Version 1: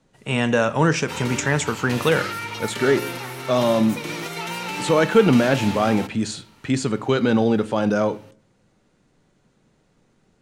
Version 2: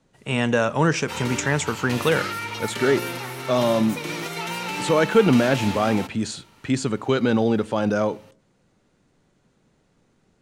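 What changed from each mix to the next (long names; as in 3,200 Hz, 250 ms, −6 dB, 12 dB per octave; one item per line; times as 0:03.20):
speech: send −8.5 dB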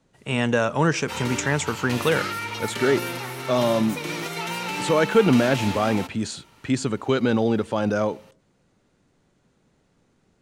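reverb: off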